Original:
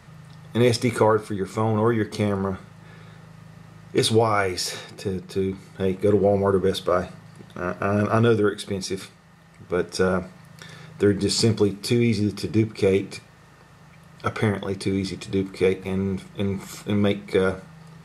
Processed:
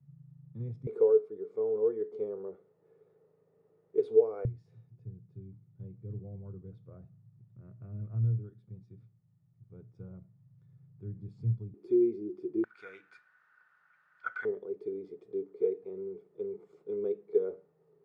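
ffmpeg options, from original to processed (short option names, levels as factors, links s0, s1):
-af "asetnsamples=n=441:p=0,asendcmd='0.87 bandpass f 440;4.45 bandpass f 120;11.74 bandpass f 360;12.64 bandpass f 1500;14.45 bandpass f 420',bandpass=f=140:t=q:w=14:csg=0"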